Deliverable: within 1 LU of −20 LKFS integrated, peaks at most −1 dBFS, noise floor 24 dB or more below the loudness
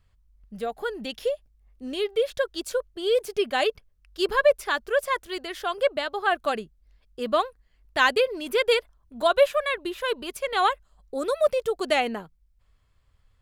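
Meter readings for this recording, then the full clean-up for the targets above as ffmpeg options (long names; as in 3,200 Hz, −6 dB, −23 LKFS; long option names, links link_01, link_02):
integrated loudness −26.0 LKFS; sample peak −7.5 dBFS; target loudness −20.0 LKFS
→ -af "volume=6dB"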